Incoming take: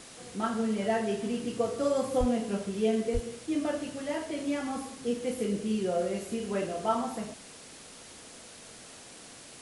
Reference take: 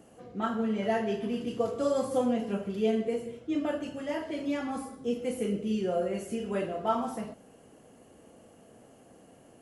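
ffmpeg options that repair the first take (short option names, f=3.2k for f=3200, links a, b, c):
-filter_complex "[0:a]asplit=3[a][b][c];[a]afade=t=out:st=2.19:d=0.02[d];[b]highpass=f=140:w=0.5412,highpass=f=140:w=1.3066,afade=t=in:st=2.19:d=0.02,afade=t=out:st=2.31:d=0.02[e];[c]afade=t=in:st=2.31:d=0.02[f];[d][e][f]amix=inputs=3:normalize=0,asplit=3[g][h][i];[g]afade=t=out:st=3.13:d=0.02[j];[h]highpass=f=140:w=0.5412,highpass=f=140:w=1.3066,afade=t=in:st=3.13:d=0.02,afade=t=out:st=3.25:d=0.02[k];[i]afade=t=in:st=3.25:d=0.02[l];[j][k][l]amix=inputs=3:normalize=0,afwtdn=0.0045"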